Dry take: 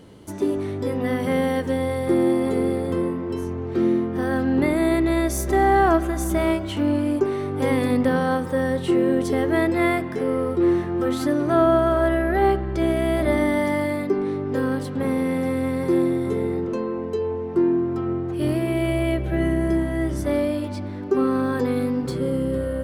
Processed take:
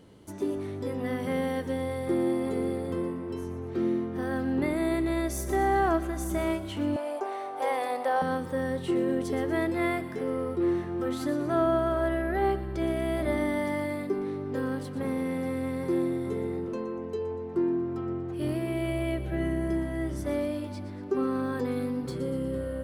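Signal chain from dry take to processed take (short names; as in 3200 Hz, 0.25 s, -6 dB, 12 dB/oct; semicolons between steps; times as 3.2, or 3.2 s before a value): 6.96–8.22 resonant high-pass 700 Hz, resonance Q 4.9; on a send: thin delay 0.12 s, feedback 50%, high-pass 3600 Hz, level -11 dB; on the sum: gain -7.5 dB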